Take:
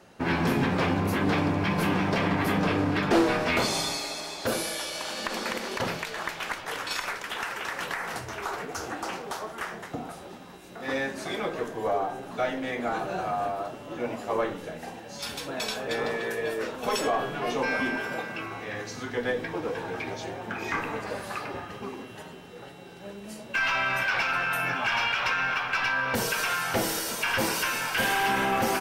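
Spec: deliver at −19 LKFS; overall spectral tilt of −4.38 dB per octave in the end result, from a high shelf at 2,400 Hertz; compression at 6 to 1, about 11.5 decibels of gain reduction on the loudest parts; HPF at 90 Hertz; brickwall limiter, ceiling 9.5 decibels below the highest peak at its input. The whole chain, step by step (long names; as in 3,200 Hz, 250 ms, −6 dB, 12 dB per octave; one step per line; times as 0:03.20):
high-pass filter 90 Hz
high-shelf EQ 2,400 Hz −7.5 dB
downward compressor 6 to 1, threshold −30 dBFS
level +17 dB
brickwall limiter −9.5 dBFS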